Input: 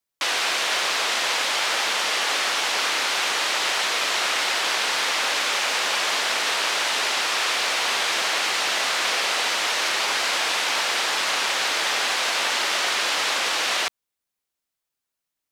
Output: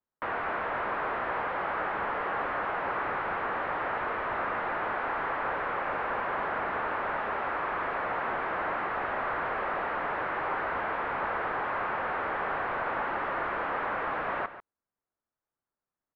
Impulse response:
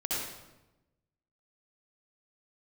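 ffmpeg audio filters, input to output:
-af "volume=23dB,asoftclip=hard,volume=-23dB,lowpass=frequency=1600:width=0.5412,lowpass=frequency=1600:width=1.3066,aecho=1:1:136:0.224,asetrate=42336,aresample=44100"

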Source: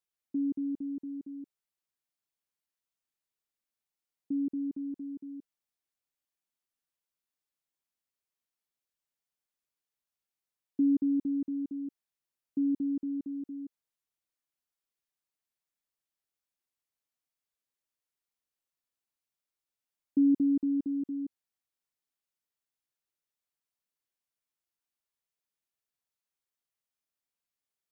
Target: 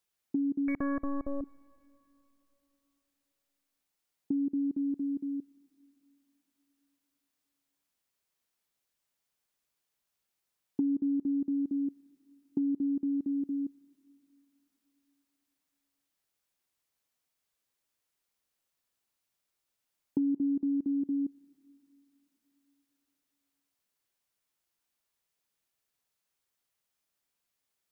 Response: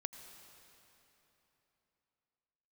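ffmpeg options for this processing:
-filter_complex "[0:a]asettb=1/sr,asplit=3[link_01][link_02][link_03];[link_01]atrim=end=0.684[link_04];[link_02]atrim=start=0.68:end=1.41,asetpts=PTS-STARTPTS,afade=type=in:duration=0.004:curve=qsin,afade=type=out:start_time=0.726:duration=0.004:curve=qsin,aeval=exprs='0.0355*(cos(1*acos(clip(val(0)/0.0355,-1,1)))-cos(1*PI/2))+0.00708*(cos(2*acos(clip(val(0)/0.0355,-1,1)))-cos(2*PI/2))+0.00141*(cos(7*acos(clip(val(0)/0.0355,-1,1)))-cos(7*PI/2))+0.01*(cos(8*acos(clip(val(0)/0.0355,-1,1)))-cos(8*PI/2))':channel_layout=same[link_05];[link_03]atrim=start=1.406[link_06];[link_04][link_05]acrossfade=duration=0.004:curve1=hsin:curve2=qsin[link_07];[link_07][link_06]acrossfade=duration=0.004:curve1=qsin:curve2=hsin,acompressor=threshold=-36dB:ratio=5,asplit=2[link_08][link_09];[1:a]atrim=start_sample=2205[link_10];[link_09][link_10]afir=irnorm=-1:irlink=0,volume=-13dB[link_11];[link_08][link_11]amix=inputs=2:normalize=0,volume=6dB"

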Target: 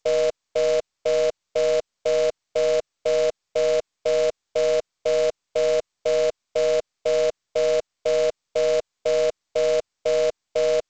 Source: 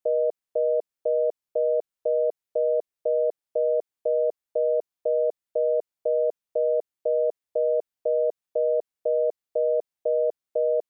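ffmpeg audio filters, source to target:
ffmpeg -i in.wav -af "equalizer=frequency=280:width=2.2:gain=-11,aeval=exprs='0.133*(cos(1*acos(clip(val(0)/0.133,-1,1)))-cos(1*PI/2))+0.0075*(cos(2*acos(clip(val(0)/0.133,-1,1)))-cos(2*PI/2))+0.00211*(cos(6*acos(clip(val(0)/0.133,-1,1)))-cos(6*PI/2))+0.000841*(cos(7*acos(clip(val(0)/0.133,-1,1)))-cos(7*PI/2))+0.00168*(cos(8*acos(clip(val(0)/0.133,-1,1)))-cos(8*PI/2))':channel_layout=same,acrusher=bits=2:mode=log:mix=0:aa=0.000001,volume=3dB" -ar 16000 -c:a g722 out.g722

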